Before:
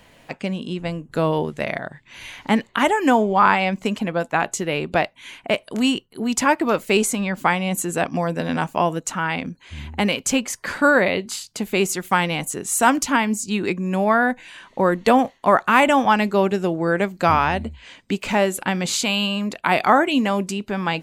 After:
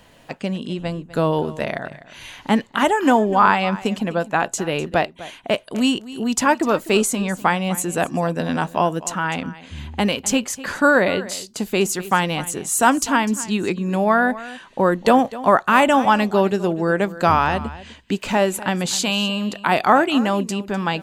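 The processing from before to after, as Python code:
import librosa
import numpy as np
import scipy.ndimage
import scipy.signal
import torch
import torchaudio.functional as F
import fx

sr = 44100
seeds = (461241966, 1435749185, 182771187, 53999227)

y = fx.peak_eq(x, sr, hz=2200.0, db=-6.0, octaves=0.29)
y = y + 10.0 ** (-17.0 / 20.0) * np.pad(y, (int(251 * sr / 1000.0), 0))[:len(y)]
y = y * 10.0 ** (1.0 / 20.0)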